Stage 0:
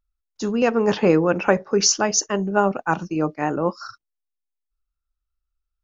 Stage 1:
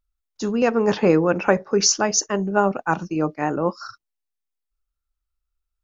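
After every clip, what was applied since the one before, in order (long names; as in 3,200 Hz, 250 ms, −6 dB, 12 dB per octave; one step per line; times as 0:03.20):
dynamic equaliser 3,000 Hz, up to −4 dB, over −46 dBFS, Q 5.2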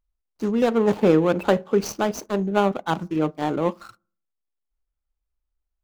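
running median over 25 samples
on a send at −24 dB: convolution reverb RT60 0.45 s, pre-delay 5 ms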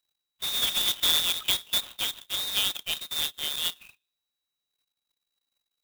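voice inversion scrambler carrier 3,900 Hz
converter with an unsteady clock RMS 0.028 ms
level −7 dB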